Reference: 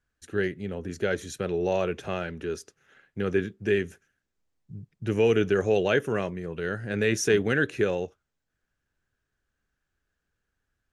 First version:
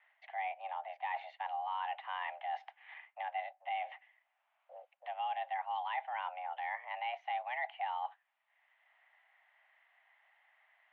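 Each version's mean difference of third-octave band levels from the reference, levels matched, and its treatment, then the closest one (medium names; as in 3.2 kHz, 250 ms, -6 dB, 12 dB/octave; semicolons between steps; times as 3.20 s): 17.0 dB: reverse; compression 5:1, threshold -39 dBFS, peak gain reduction 19 dB; reverse; mistuned SSB +370 Hz 320–2700 Hz; three bands compressed up and down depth 40%; trim +3.5 dB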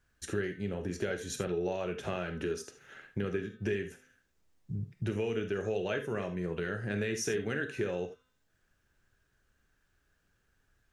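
4.5 dB: de-hum 254.8 Hz, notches 18; compression 5:1, threshold -39 dBFS, peak gain reduction 19 dB; gated-style reverb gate 100 ms flat, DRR 6.5 dB; trim +6 dB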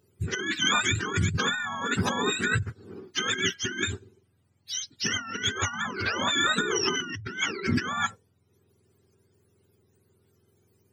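12.5 dB: spectrum inverted on a logarithmic axis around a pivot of 790 Hz; dynamic bell 2.3 kHz, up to +4 dB, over -41 dBFS, Q 1.6; compressor with a negative ratio -37 dBFS, ratio -1; trim +7.5 dB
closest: second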